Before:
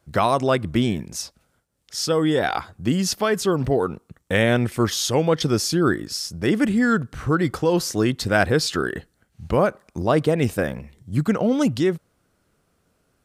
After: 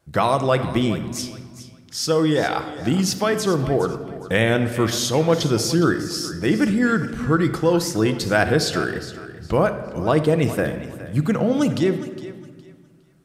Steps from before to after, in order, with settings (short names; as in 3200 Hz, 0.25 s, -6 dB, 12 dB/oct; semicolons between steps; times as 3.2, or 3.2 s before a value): vibrato 5.5 Hz 31 cents; thinning echo 0.412 s, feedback 26%, level -14 dB; shoebox room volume 1600 m³, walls mixed, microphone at 0.68 m